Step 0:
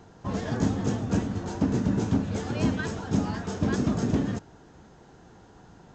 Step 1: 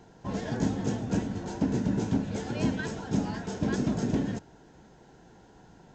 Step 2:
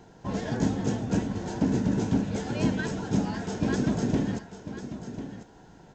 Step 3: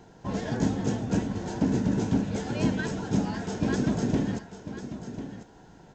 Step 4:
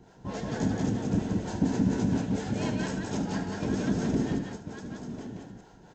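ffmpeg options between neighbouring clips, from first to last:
-af "equalizer=f=86:t=o:w=0.47:g=-7.5,bandreject=f=1.2k:w=5.8,volume=-2dB"
-af "aecho=1:1:1045:0.266,volume=2dB"
-af anull
-filter_complex "[0:a]acrossover=split=410[a][b];[a]aeval=exprs='val(0)*(1-0.7/2+0.7/2*cos(2*PI*4.3*n/s))':c=same[c];[b]aeval=exprs='val(0)*(1-0.7/2-0.7/2*cos(2*PI*4.3*n/s))':c=same[d];[c][d]amix=inputs=2:normalize=0,aecho=1:1:75|178:0.316|0.708"

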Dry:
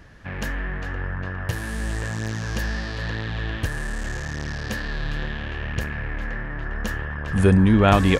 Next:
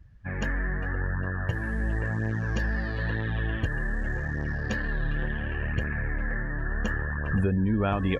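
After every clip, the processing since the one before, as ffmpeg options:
-af "acompressor=threshold=-21dB:ratio=16,afftdn=nr=22:nf=-36"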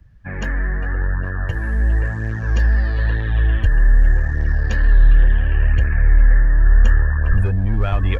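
-filter_complex "[0:a]asubboost=boost=9.5:cutoff=57,acrossover=split=130|980|2800[a][b][c][d];[b]asoftclip=type=hard:threshold=-30.5dB[e];[a][e][c][d]amix=inputs=4:normalize=0,volume=4.5dB"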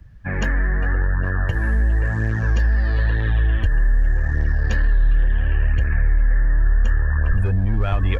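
-af "acompressor=threshold=-20dB:ratio=3,volume=4dB"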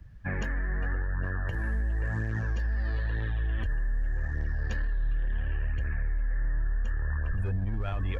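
-af "alimiter=limit=-18.5dB:level=0:latency=1:release=71,volume=-4.5dB"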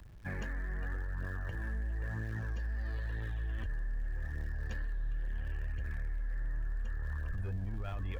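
-af "aeval=exprs='val(0)+0.5*0.00531*sgn(val(0))':c=same,volume=-8dB"

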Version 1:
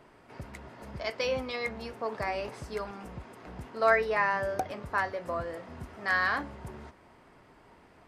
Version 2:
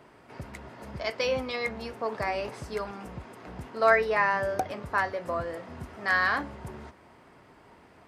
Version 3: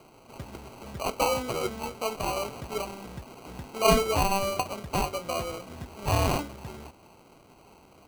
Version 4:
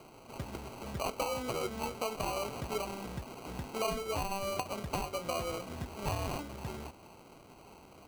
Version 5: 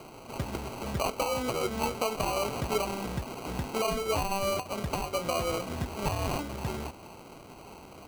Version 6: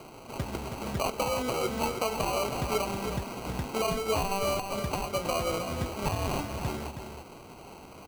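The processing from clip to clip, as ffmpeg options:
-af "highpass=52,volume=2.5dB"
-af "equalizer=f=4.5k:w=3.8:g=14.5,acrusher=samples=25:mix=1:aa=0.000001"
-af "acompressor=threshold=-31dB:ratio=10"
-af "alimiter=level_in=2dB:limit=-24dB:level=0:latency=1:release=252,volume=-2dB,volume=7dB"
-af "aecho=1:1:320:0.398"

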